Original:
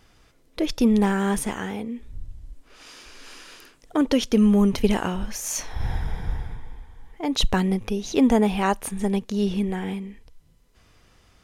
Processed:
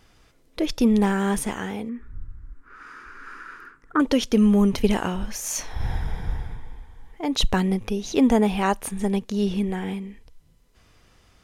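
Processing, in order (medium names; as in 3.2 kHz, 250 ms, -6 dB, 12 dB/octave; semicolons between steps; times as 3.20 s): 1.89–4.00 s: FFT filter 400 Hz 0 dB, 640 Hz -13 dB, 1.4 kHz +15 dB, 3.1 kHz -15 dB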